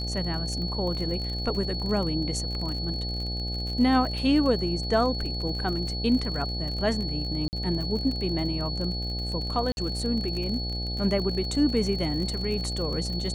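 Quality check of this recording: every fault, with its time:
mains buzz 60 Hz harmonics 14 −32 dBFS
surface crackle 45 per second −32 dBFS
whistle 4,400 Hz −33 dBFS
0:07.48–0:07.53: drop-out 49 ms
0:09.72–0:09.77: drop-out 51 ms

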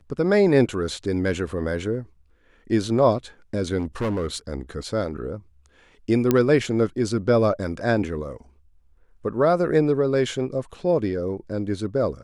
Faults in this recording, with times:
0:03.78–0:04.37: clipping −21 dBFS
0:06.31: click −6 dBFS

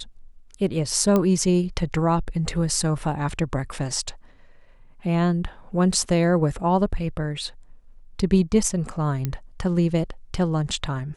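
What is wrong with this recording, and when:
0:01.16: click −9 dBFS
0:09.25: click −13 dBFS

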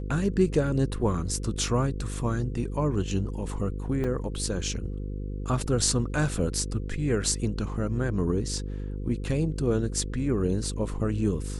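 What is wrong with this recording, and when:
mains buzz 50 Hz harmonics 10 −33 dBFS
0:04.04: drop-out 4.5 ms

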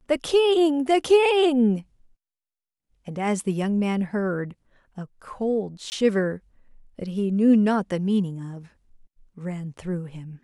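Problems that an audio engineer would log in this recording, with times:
0:05.90–0:05.92: drop-out 19 ms

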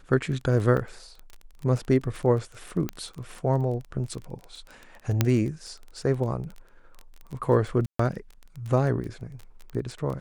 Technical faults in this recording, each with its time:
surface crackle 18 per second −32 dBFS
0:00.77: drop-out 3.5 ms
0:02.89: click −16 dBFS
0:05.21: click −6 dBFS
0:07.86–0:07.99: drop-out 134 ms

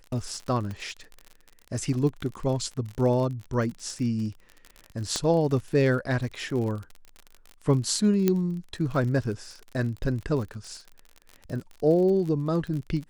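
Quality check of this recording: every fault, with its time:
surface crackle 44 per second −33 dBFS
0:00.71: click −25 dBFS
0:05.16: click −13 dBFS
0:08.28: click −9 dBFS

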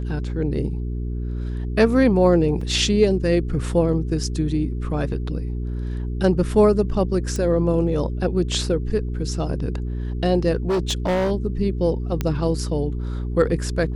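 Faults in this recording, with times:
mains hum 60 Hz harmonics 7 −26 dBFS
0:02.61: drop-out 4.1 ms
0:07.36: click
0:10.68–0:11.32: clipping −17.5 dBFS
0:12.21: click −10 dBFS

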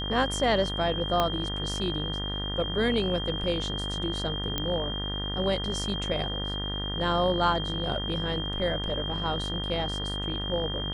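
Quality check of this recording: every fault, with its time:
mains buzz 50 Hz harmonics 39 −34 dBFS
whistle 3,200 Hz −33 dBFS
0:01.20: click −11 dBFS
0:04.58: click −13 dBFS

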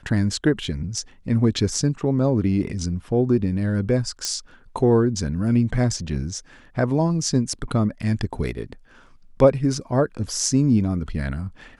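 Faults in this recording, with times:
0:04.25: click −10 dBFS

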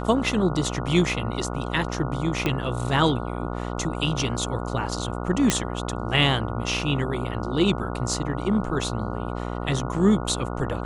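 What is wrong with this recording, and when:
mains buzz 60 Hz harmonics 24 −30 dBFS
0:02.46: click −10 dBFS
0:05.50: click −4 dBFS

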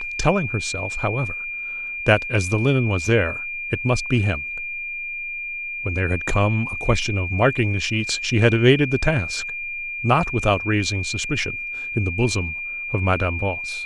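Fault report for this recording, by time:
whistle 2,400 Hz −27 dBFS

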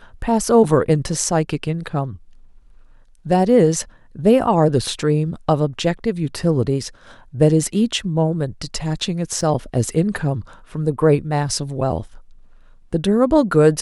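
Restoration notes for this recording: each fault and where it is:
0:09.41: drop-out 3.8 ms

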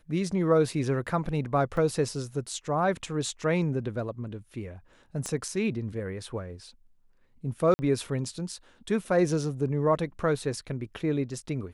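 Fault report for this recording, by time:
0:01.77: drop-out 2.7 ms
0:05.26: click −20 dBFS
0:07.74–0:07.79: drop-out 50 ms

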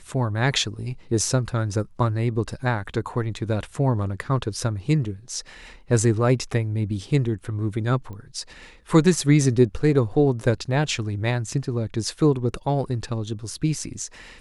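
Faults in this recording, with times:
0:08.13: click −27 dBFS

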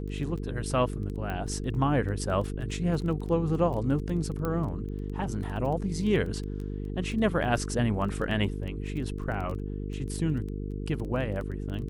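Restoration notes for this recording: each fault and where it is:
mains buzz 50 Hz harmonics 9 −34 dBFS
surface crackle 12 per second −34 dBFS
0:01.30: click −22 dBFS
0:04.45: click −18 dBFS

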